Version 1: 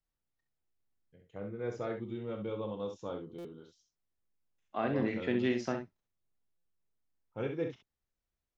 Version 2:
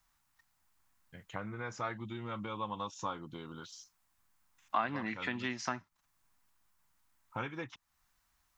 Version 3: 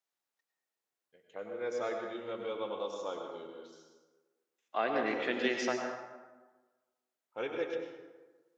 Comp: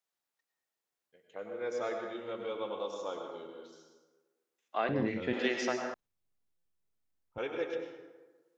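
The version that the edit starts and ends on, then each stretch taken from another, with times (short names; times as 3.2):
3
4.89–5.33 from 1
5.94–7.38 from 1
not used: 2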